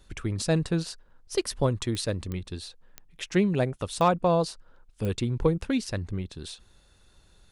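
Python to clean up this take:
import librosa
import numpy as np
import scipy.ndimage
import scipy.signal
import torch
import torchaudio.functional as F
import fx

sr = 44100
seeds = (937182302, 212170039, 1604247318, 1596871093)

y = fx.fix_declip(x, sr, threshold_db=-12.0)
y = fx.fix_declick_ar(y, sr, threshold=10.0)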